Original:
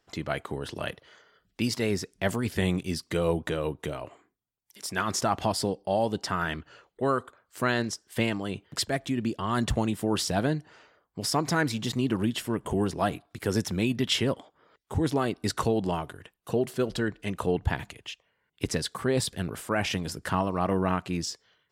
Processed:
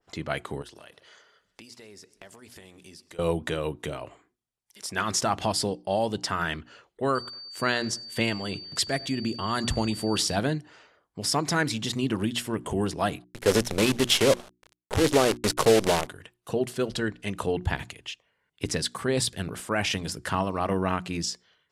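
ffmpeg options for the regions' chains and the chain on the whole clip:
-filter_complex "[0:a]asettb=1/sr,asplit=3[s0][s1][s2];[s0]atrim=end=0.624[s3];[s1]atrim=start=0.62:end=3.19,asetpts=PTS-STARTPTS,afade=t=in:d=0.004:c=qsin,afade=t=out:st=2.566:d=0.004:c=qsin,bass=f=250:g=-8,treble=f=4000:g=5,acompressor=threshold=0.00631:ratio=10:attack=3.2:release=140:knee=1:detection=peak,aecho=1:1:134|268|402|536|670:0.1|0.059|0.0348|0.0205|0.0121,atrim=end_sample=113337[s4];[s2]atrim=start=3.186[s5];[s3][s4]acrossfade=d=0.004:c1=hsin:c2=qsin[s6];[s6][s5]acrossfade=d=0.004:c1=qsin:c2=hsin,asettb=1/sr,asplit=3[s7][s8][s9];[s7]atrim=end=7.154[s10];[s8]atrim=start=7.15:end=10.36,asetpts=PTS-STARTPTS,afade=t=in:d=0.004:c=qsin,afade=t=out:st=3.206:d=0.004:c=qsin,aeval=exprs='val(0)+0.00794*sin(2*PI*4600*n/s)':c=same,asplit=2[s11][s12];[s12]adelay=99,lowpass=f=2100:p=1,volume=0.0794,asplit=2[s13][s14];[s14]adelay=99,lowpass=f=2100:p=1,volume=0.49,asplit=2[s15][s16];[s16]adelay=99,lowpass=f=2100:p=1,volume=0.49[s17];[s11][s13][s15][s17]amix=inputs=4:normalize=0,atrim=end_sample=141561[s18];[s9]atrim=start=10.356[s19];[s10][s18]acrossfade=d=0.004:c1=hsin:c2=qsin[s20];[s20][s19]acrossfade=d=0.004:c1=qsin:c2=hsin,asettb=1/sr,asplit=3[s21][s22][s23];[s21]atrim=end=13.244[s24];[s22]atrim=start=13.24:end=16.07,asetpts=PTS-STARTPTS,afade=t=in:d=0.004:c=qsin,afade=t=out:st=2.826:d=0.004:c=qsin,equalizer=f=530:w=1.5:g=11,acrusher=bits=5:dc=4:mix=0:aa=0.000001[s25];[s23]atrim=start=16.066[s26];[s24][s25]acrossfade=d=0.004:c1=hsin:c2=qsin[s27];[s27][s26]acrossfade=d=0.004:c1=qsin:c2=hsin,lowpass=f=12000:w=0.5412,lowpass=f=12000:w=1.3066,bandreject=f=60:t=h:w=6,bandreject=f=120:t=h:w=6,bandreject=f=180:t=h:w=6,bandreject=f=240:t=h:w=6,bandreject=f=300:t=h:w=6,bandreject=f=360:t=h:w=6,adynamicequalizer=threshold=0.0112:dfrequency=1800:dqfactor=0.7:tfrequency=1800:tqfactor=0.7:attack=5:release=100:ratio=0.375:range=2:mode=boostabove:tftype=highshelf"

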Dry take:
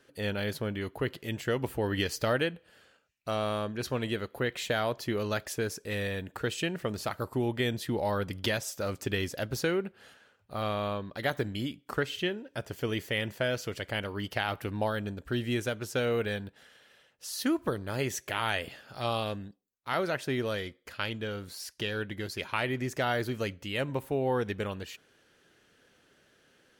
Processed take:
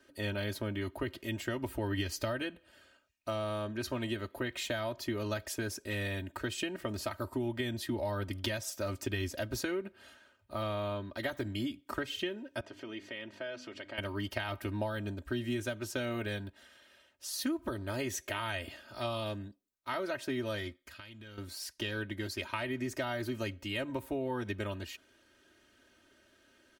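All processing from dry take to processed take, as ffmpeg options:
-filter_complex "[0:a]asettb=1/sr,asplit=3[s0][s1][s2];[s0]atrim=end=12.604[s3];[s1]atrim=start=12.6:end=13.98,asetpts=PTS-STARTPTS,afade=t=in:d=0.004:c=qsin,afade=t=out:st=1.376:d=0.004:c=qsin,bandreject=f=50:t=h:w=6,bandreject=f=100:t=h:w=6,bandreject=f=150:t=h:w=6,bandreject=f=200:t=h:w=6,bandreject=f=250:t=h:w=6,bandreject=f=300:t=h:w=6,acompressor=threshold=0.01:ratio=2.5:attack=3.2:release=140:knee=1:detection=peak,highpass=210,lowpass=4300[s4];[s2]atrim=start=13.976[s5];[s3][s4]acrossfade=d=0.004:c1=hsin:c2=qsin[s6];[s6][s5]acrossfade=d=0.004:c1=qsin:c2=hsin,asettb=1/sr,asplit=3[s7][s8][s9];[s7]atrim=end=20.764[s10];[s8]atrim=start=20.76:end=21.38,asetpts=PTS-STARTPTS,afade=t=in:d=0.004:c=qsin,afade=t=out:st=0.616:d=0.004:c=qsin,equalizer=f=480:w=0.52:g=-6.5,acompressor=threshold=0.00562:ratio=5:attack=3.2:release=140:knee=1:detection=peak[s11];[s9]atrim=start=21.376[s12];[s10][s11]acrossfade=d=0.004:c1=hsin:c2=qsin[s13];[s13][s12]acrossfade=d=0.004:c1=qsin:c2=hsin,equalizer=f=92:t=o:w=1.8:g=3,aecho=1:1:3.2:0.87,acrossover=split=130[s14][s15];[s15]acompressor=threshold=0.0398:ratio=6[s16];[s14][s16]amix=inputs=2:normalize=0,volume=0.668"

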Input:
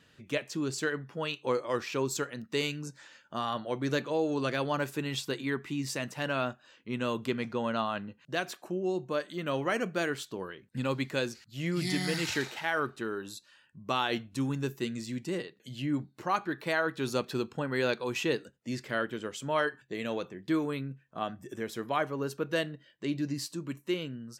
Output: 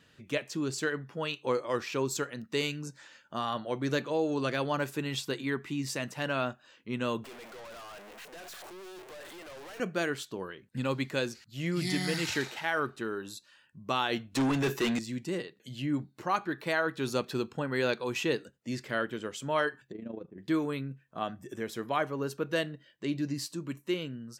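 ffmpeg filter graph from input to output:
-filter_complex "[0:a]asettb=1/sr,asplit=3[s0][s1][s2];[s0]atrim=end=7.244[s3];[s1]atrim=start=7.24:end=9.8,asetpts=PTS-STARTPTS,afade=t=in:d=0.004:c=qsin,afade=t=out:st=2.556:d=0.004:c=qsin,aeval=exprs='val(0)+0.5*0.0211*sgn(val(0))':c=same,highpass=f=400:w=0.5412,highpass=f=400:w=1.3066,aeval=exprs='(tanh(178*val(0)+0.2)-tanh(0.2))/178':c=same[s4];[s2]atrim=start=9.796[s5];[s3][s4]acrossfade=d=0.004:c1=hsin:c2=qsin[s6];[s6][s5]acrossfade=d=0.004:c1=qsin:c2=hsin,asettb=1/sr,asplit=3[s7][s8][s9];[s7]atrim=end=14.354[s10];[s8]atrim=start=14.35:end=14.99,asetpts=PTS-STARTPTS,afade=t=in:d=0.004:c=qsin,afade=t=out:st=0.636:d=0.004:c=qsin,highpass=f=48:w=0.5412,highpass=f=48:w=1.3066,asplit=2[s11][s12];[s12]highpass=f=720:p=1,volume=22.4,asoftclip=type=tanh:threshold=0.1[s13];[s11][s13]amix=inputs=2:normalize=0,lowpass=f=3300:p=1,volume=0.501[s14];[s9]atrim=start=14.986[s15];[s10][s14]acrossfade=d=0.004:c1=hsin:c2=qsin[s16];[s16][s15]acrossfade=d=0.004:c1=qsin:c2=hsin,asettb=1/sr,asplit=3[s17][s18][s19];[s17]atrim=end=19.924[s20];[s18]atrim=start=19.92:end=20.38,asetpts=PTS-STARTPTS,afade=t=in:d=0.004:c=qsin,afade=t=out:st=0.456:d=0.004:c=qsin,bandpass=f=190:t=q:w=0.86,asplit=2[s21][s22];[s22]adelay=12,volume=0.398[s23];[s21][s23]amix=inputs=2:normalize=0,atrim=end_sample=20286,tremolo=f=27:d=0.71[s24];[s19]atrim=start=20.376[s25];[s20][s24]acrossfade=d=0.004:c1=hsin:c2=qsin[s26];[s26][s25]acrossfade=d=0.004:c1=qsin:c2=hsin"

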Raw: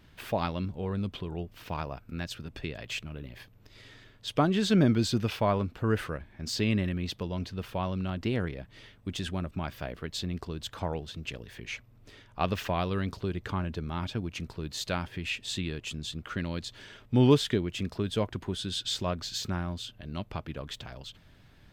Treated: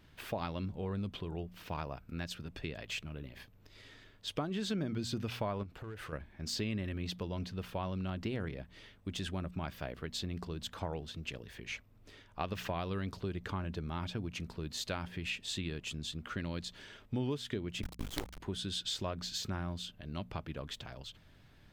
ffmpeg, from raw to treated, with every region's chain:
-filter_complex "[0:a]asettb=1/sr,asplit=3[s0][s1][s2];[s0]atrim=end=5.634[s3];[s1]atrim=start=5.63:end=6.13,asetpts=PTS-STARTPTS,afade=t=in:d=0.004:c=qsin,afade=t=out:st=0.496:d=0.004:c=qsin,equalizer=f=230:w=4:g=-7,acompressor=threshold=0.0158:ratio=16:attack=3.2:release=140:knee=1:detection=peak,asoftclip=type=hard:threshold=0.0178[s4];[s2]atrim=start=6.126[s5];[s3][s4]acrossfade=d=0.004:c1=hsin:c2=qsin[s6];[s6][s5]acrossfade=d=0.004:c1=qsin:c2=hsin,asettb=1/sr,asplit=3[s7][s8][s9];[s7]atrim=end=17.824[s10];[s8]atrim=start=17.82:end=18.4,asetpts=PTS-STARTPTS,afade=t=in:d=0.004:c=qsin,afade=t=out:st=0.576:d=0.004:c=qsin,agate=range=0.0224:threshold=0.00562:ratio=3:release=100:detection=peak,afreqshift=-150,acrusher=bits=4:dc=4:mix=0:aa=0.000001[s11];[s9]atrim=start=18.396[s12];[s10][s11]acrossfade=d=0.004:c1=hsin:c2=qsin[s13];[s13][s12]acrossfade=d=0.004:c1=qsin:c2=hsin,bandreject=f=59.65:t=h:w=4,bandreject=f=119.3:t=h:w=4,bandreject=f=178.95:t=h:w=4,bandreject=f=238.6:t=h:w=4,acompressor=threshold=0.0355:ratio=6,volume=0.668"

